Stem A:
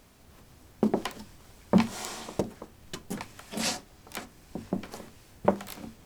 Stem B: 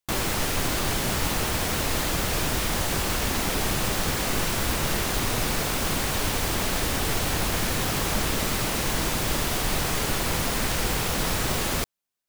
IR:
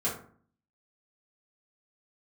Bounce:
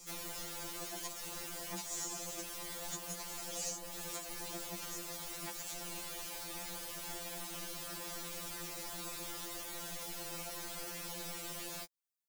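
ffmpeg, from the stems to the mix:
-filter_complex "[0:a]equalizer=frequency=6800:width=2:gain=13,asoftclip=type=tanh:threshold=-20dB,volume=-2.5dB[link_01];[1:a]volume=-15dB[link_02];[link_01][link_02]amix=inputs=2:normalize=0,highshelf=frequency=3600:gain=11.5,acrossover=split=290|1000|6400[link_03][link_04][link_05][link_06];[link_03]acompressor=threshold=-51dB:ratio=4[link_07];[link_04]acompressor=threshold=-45dB:ratio=4[link_08];[link_05]acompressor=threshold=-46dB:ratio=4[link_09];[link_06]acompressor=threshold=-44dB:ratio=4[link_10];[link_07][link_08][link_09][link_10]amix=inputs=4:normalize=0,afftfilt=real='re*2.83*eq(mod(b,8),0)':imag='im*2.83*eq(mod(b,8),0)':win_size=2048:overlap=0.75"

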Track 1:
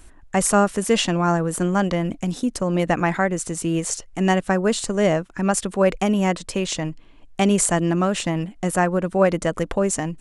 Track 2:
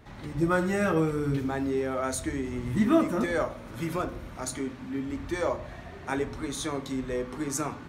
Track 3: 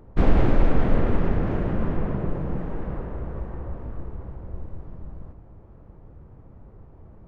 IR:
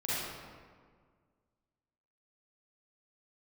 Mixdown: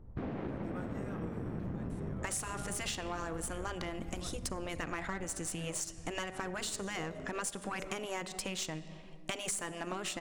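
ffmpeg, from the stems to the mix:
-filter_complex "[0:a]tiltshelf=frequency=820:gain=-3.5,adelay=1900,volume=-5dB,asplit=2[link_01][link_02];[link_02]volume=-21.5dB[link_03];[1:a]adelay=250,volume=-16.5dB[link_04];[2:a]bass=frequency=250:gain=9,treble=frequency=4000:gain=-7,volume=-13.5dB,asplit=2[link_05][link_06];[link_06]volume=-12.5dB[link_07];[3:a]atrim=start_sample=2205[link_08];[link_03][link_07]amix=inputs=2:normalize=0[link_09];[link_09][link_08]afir=irnorm=-1:irlink=0[link_10];[link_01][link_04][link_05][link_10]amix=inputs=4:normalize=0,afftfilt=real='re*lt(hypot(re,im),0.316)':imag='im*lt(hypot(re,im),0.316)':win_size=1024:overlap=0.75,aeval=exprs='0.224*(cos(1*acos(clip(val(0)/0.224,-1,1)))-cos(1*PI/2))+0.0112*(cos(8*acos(clip(val(0)/0.224,-1,1)))-cos(8*PI/2))':channel_layout=same,acompressor=threshold=-35dB:ratio=6"

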